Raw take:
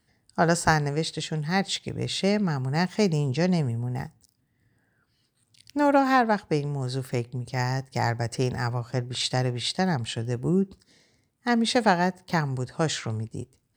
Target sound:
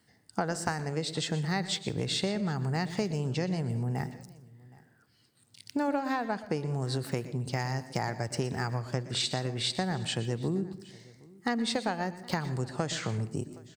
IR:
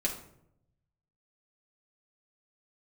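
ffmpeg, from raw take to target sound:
-filter_complex "[0:a]highpass=100,acompressor=threshold=-30dB:ratio=12,aecho=1:1:768:0.0668,asplit=2[link_01][link_02];[1:a]atrim=start_sample=2205,adelay=117[link_03];[link_02][link_03]afir=irnorm=-1:irlink=0,volume=-18dB[link_04];[link_01][link_04]amix=inputs=2:normalize=0,volume=3dB"

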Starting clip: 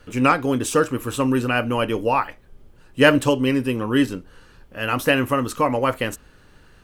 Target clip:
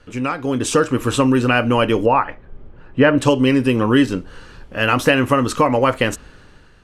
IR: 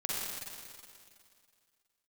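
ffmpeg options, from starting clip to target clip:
-af "acompressor=threshold=-22dB:ratio=2.5,asetnsamples=nb_out_samples=441:pad=0,asendcmd='2.06 lowpass f 2000;3.18 lowpass f 8100',lowpass=7900,dynaudnorm=framelen=160:gausssize=7:maxgain=11.5dB"

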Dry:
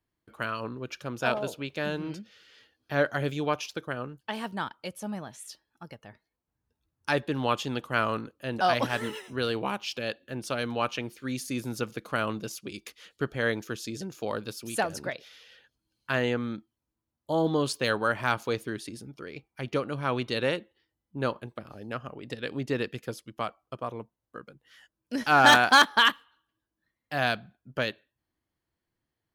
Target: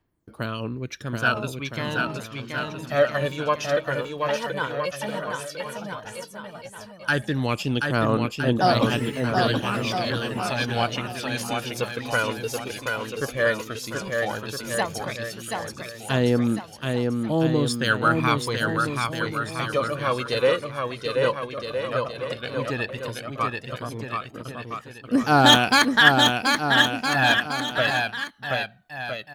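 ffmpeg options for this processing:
ffmpeg -i in.wav -af "aphaser=in_gain=1:out_gain=1:delay=2.2:decay=0.66:speed=0.12:type=triangular,aecho=1:1:730|1314|1781|2155|2454:0.631|0.398|0.251|0.158|0.1,volume=2dB" out.wav

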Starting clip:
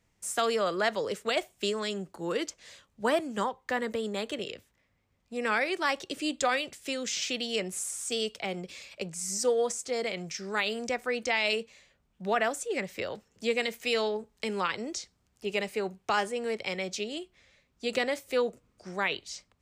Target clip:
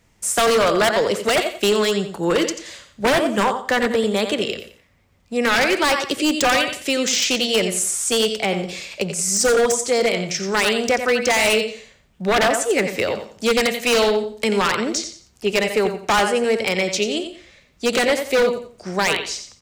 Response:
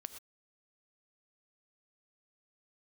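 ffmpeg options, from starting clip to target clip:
-filter_complex "[0:a]aecho=1:1:88|176|264:0.335|0.0938|0.0263,asplit=2[link_01][link_02];[1:a]atrim=start_sample=2205[link_03];[link_02][link_03]afir=irnorm=-1:irlink=0,volume=0.5dB[link_04];[link_01][link_04]amix=inputs=2:normalize=0,aeval=exprs='0.106*(abs(mod(val(0)/0.106+3,4)-2)-1)':channel_layout=same,volume=8.5dB"

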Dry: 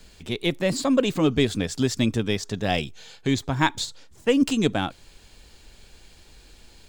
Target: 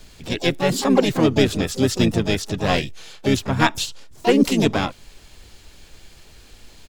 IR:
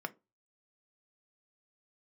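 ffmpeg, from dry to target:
-filter_complex "[0:a]asplit=4[link_01][link_02][link_03][link_04];[link_02]asetrate=33038,aresample=44100,atempo=1.33484,volume=-6dB[link_05];[link_03]asetrate=66075,aresample=44100,atempo=0.66742,volume=-8dB[link_06];[link_04]asetrate=88200,aresample=44100,atempo=0.5,volume=-16dB[link_07];[link_01][link_05][link_06][link_07]amix=inputs=4:normalize=0,volume=2.5dB"

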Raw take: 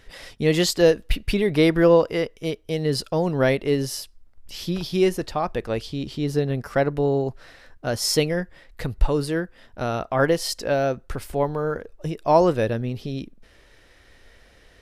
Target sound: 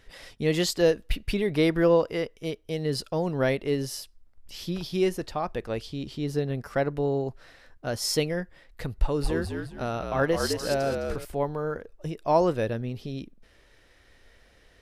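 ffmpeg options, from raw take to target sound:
ffmpeg -i in.wav -filter_complex "[0:a]asettb=1/sr,asplit=3[link_01][link_02][link_03];[link_01]atrim=end=8.944[link_04];[link_02]atrim=start=8.94:end=11.25,asetpts=PTS-STARTPTS,afade=type=in:duration=0.004:curve=qsin,afade=type=out:start_time=2.306:duration=0.004:curve=qsin,asplit=5[link_05][link_06][link_07][link_08][link_09];[link_06]adelay=209,afreqshift=-57,volume=-4.5dB[link_10];[link_07]adelay=418,afreqshift=-114,volume=-14.4dB[link_11];[link_08]adelay=627,afreqshift=-171,volume=-24.3dB[link_12];[link_09]adelay=836,afreqshift=-228,volume=-34.2dB[link_13];[link_05][link_10][link_11][link_12][link_13]amix=inputs=5:normalize=0,atrim=end_sample=101871[link_14];[link_03]atrim=start=11.246[link_15];[link_04][link_14]acrossfade=duration=0.004:curve1=hsin:curve2=qsin[link_16];[link_16][link_15]acrossfade=duration=0.004:curve1=qsin:curve2=hsin,volume=-5dB" out.wav

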